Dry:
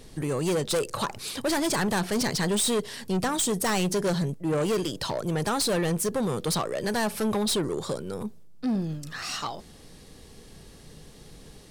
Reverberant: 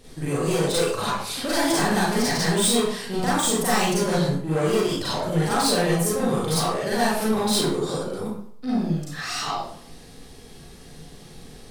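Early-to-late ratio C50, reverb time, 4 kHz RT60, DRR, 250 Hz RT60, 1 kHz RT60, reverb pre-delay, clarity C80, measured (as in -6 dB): -1.0 dB, 0.60 s, 0.45 s, -9.0 dB, 0.55 s, 0.60 s, 33 ms, 3.5 dB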